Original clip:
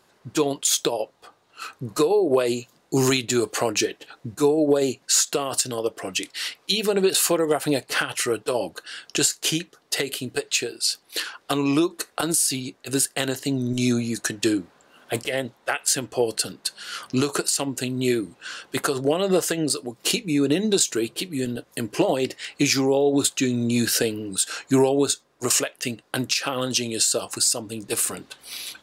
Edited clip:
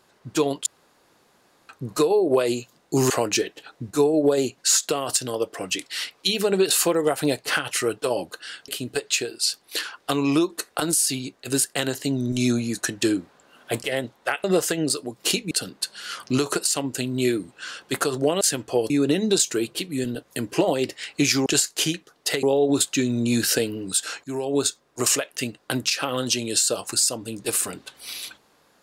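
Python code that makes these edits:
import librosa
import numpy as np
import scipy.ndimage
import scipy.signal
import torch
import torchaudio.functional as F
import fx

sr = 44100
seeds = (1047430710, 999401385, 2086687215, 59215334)

y = fx.edit(x, sr, fx.room_tone_fill(start_s=0.66, length_s=1.03),
    fx.cut(start_s=3.1, length_s=0.44),
    fx.move(start_s=9.12, length_s=0.97, to_s=22.87),
    fx.swap(start_s=15.85, length_s=0.49, other_s=19.24, other_length_s=1.07),
    fx.fade_in_from(start_s=24.68, length_s=0.37, curve='qua', floor_db=-14.5), tone=tone)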